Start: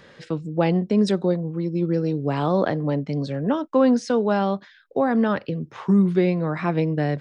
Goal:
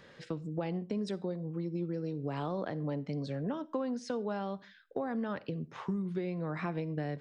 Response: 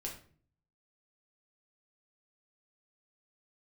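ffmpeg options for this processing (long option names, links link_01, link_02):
-filter_complex "[0:a]acompressor=threshold=-25dB:ratio=6,asplit=2[link_01][link_02];[1:a]atrim=start_sample=2205,afade=type=out:start_time=0.16:duration=0.01,atrim=end_sample=7497,adelay=52[link_03];[link_02][link_03]afir=irnorm=-1:irlink=0,volume=-19.5dB[link_04];[link_01][link_04]amix=inputs=2:normalize=0,volume=-7dB"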